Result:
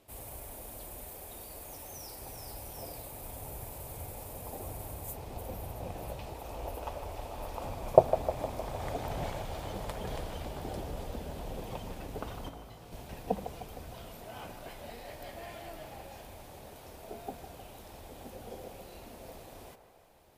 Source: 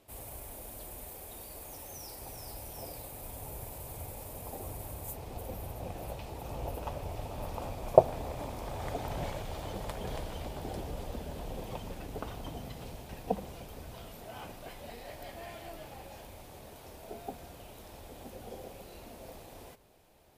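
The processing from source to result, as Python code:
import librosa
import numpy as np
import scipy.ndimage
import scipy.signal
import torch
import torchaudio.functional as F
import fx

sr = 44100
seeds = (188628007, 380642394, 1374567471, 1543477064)

y = fx.peak_eq(x, sr, hz=140.0, db=-10.0, octaves=1.3, at=(6.33, 7.63))
y = fx.comb_fb(y, sr, f0_hz=55.0, decay_s=0.3, harmonics='all', damping=0.0, mix_pct=100, at=(12.48, 12.91), fade=0.02)
y = fx.echo_wet_bandpass(y, sr, ms=154, feedback_pct=62, hz=980.0, wet_db=-9)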